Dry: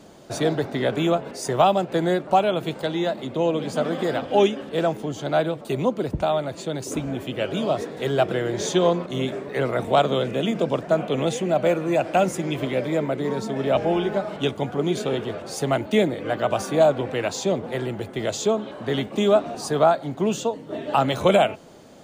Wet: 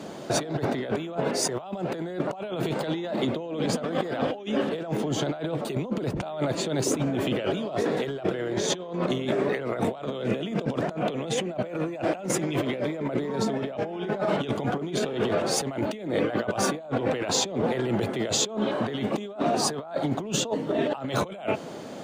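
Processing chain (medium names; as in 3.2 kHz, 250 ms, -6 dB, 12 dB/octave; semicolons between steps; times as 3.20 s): high-pass 130 Hz; treble shelf 5.9 kHz -7 dB; compressor with a negative ratio -32 dBFS, ratio -1; trim +2.5 dB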